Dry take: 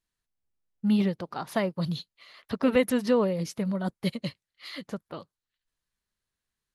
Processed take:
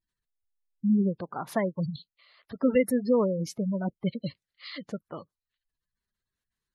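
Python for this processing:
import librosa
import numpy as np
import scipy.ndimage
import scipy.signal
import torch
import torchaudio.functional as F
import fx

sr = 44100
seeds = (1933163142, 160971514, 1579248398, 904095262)

y = fx.spec_gate(x, sr, threshold_db=-20, keep='strong')
y = fx.level_steps(y, sr, step_db=12, at=(1.89, 2.61), fade=0.02)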